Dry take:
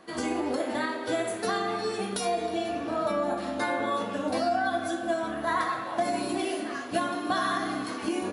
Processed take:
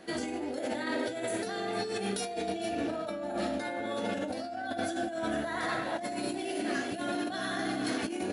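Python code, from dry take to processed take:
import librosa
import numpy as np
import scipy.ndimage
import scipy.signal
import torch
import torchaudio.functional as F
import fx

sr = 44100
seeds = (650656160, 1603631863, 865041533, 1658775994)

p1 = fx.peak_eq(x, sr, hz=1100.0, db=-13.5, octaves=0.35)
p2 = p1 + fx.echo_single(p1, sr, ms=454, db=-14.0, dry=0)
y = fx.over_compress(p2, sr, threshold_db=-34.0, ratio=-1.0)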